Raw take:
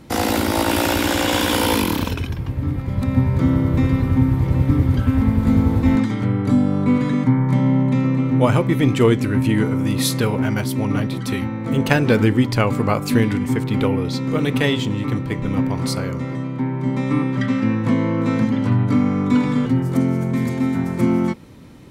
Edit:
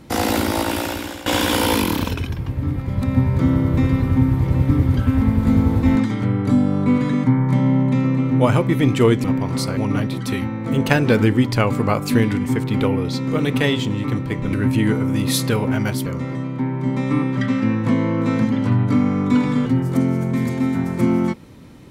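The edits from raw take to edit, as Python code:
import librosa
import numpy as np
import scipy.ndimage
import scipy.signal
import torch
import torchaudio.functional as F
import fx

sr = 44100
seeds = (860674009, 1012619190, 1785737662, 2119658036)

y = fx.edit(x, sr, fx.fade_out_to(start_s=0.4, length_s=0.86, floor_db=-18.5),
    fx.swap(start_s=9.24, length_s=1.53, other_s=15.53, other_length_s=0.53), tone=tone)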